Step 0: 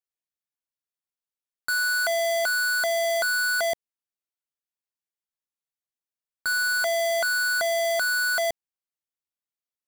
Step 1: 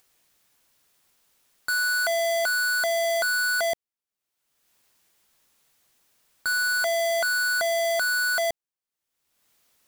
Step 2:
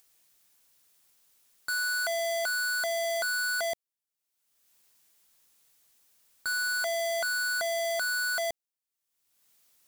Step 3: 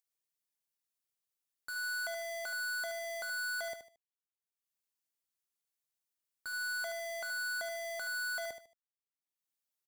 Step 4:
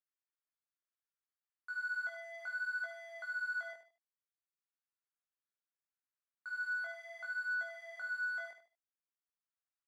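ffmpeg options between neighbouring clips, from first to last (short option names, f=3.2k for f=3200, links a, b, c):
-af "acompressor=mode=upward:threshold=-45dB:ratio=2.5"
-af "highshelf=f=4k:g=8,asoftclip=type=hard:threshold=-21.5dB,volume=-6dB"
-af "aeval=exprs='0.0447*(cos(1*acos(clip(val(0)/0.0447,-1,1)))-cos(1*PI/2))+0.00447*(cos(2*acos(clip(val(0)/0.0447,-1,1)))-cos(2*PI/2))+0.00112*(cos(4*acos(clip(val(0)/0.0447,-1,1)))-cos(4*PI/2))+0.00562*(cos(7*acos(clip(val(0)/0.0447,-1,1)))-cos(7*PI/2))':c=same,asoftclip=type=tanh:threshold=-33dB,aecho=1:1:75|150|225:0.355|0.106|0.0319,volume=-6dB"
-af "bandpass=f=1.4k:t=q:w=2.2:csg=0,flanger=delay=17.5:depth=5:speed=0.66,volume=2.5dB"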